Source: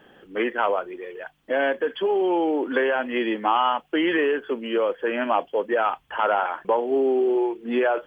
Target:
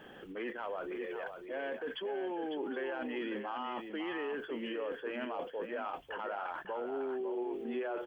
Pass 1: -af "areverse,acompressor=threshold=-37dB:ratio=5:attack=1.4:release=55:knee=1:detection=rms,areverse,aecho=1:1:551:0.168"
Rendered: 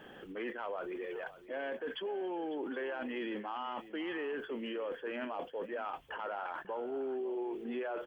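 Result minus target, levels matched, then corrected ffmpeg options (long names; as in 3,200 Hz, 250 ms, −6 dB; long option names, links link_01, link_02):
echo-to-direct −8 dB
-af "areverse,acompressor=threshold=-37dB:ratio=5:attack=1.4:release=55:knee=1:detection=rms,areverse,aecho=1:1:551:0.422"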